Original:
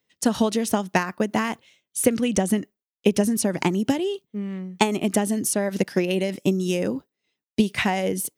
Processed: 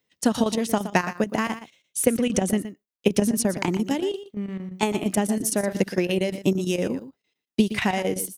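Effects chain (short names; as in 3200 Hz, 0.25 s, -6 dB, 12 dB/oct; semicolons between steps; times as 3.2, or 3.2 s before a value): chopper 8.7 Hz, depth 65%, duty 80%; echo 0.119 s -12.5 dB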